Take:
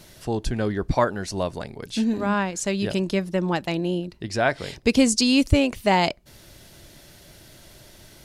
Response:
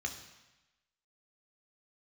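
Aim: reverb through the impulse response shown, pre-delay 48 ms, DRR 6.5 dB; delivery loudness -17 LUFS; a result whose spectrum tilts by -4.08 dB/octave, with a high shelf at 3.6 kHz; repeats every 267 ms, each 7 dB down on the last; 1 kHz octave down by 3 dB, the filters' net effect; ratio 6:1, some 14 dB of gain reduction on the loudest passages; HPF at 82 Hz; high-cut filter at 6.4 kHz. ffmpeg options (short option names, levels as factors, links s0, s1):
-filter_complex "[0:a]highpass=82,lowpass=6400,equalizer=f=1000:t=o:g=-4.5,highshelf=f=3600:g=7.5,acompressor=threshold=0.0355:ratio=6,aecho=1:1:267|534|801|1068|1335:0.447|0.201|0.0905|0.0407|0.0183,asplit=2[s0][s1];[1:a]atrim=start_sample=2205,adelay=48[s2];[s1][s2]afir=irnorm=-1:irlink=0,volume=0.398[s3];[s0][s3]amix=inputs=2:normalize=0,volume=5.31"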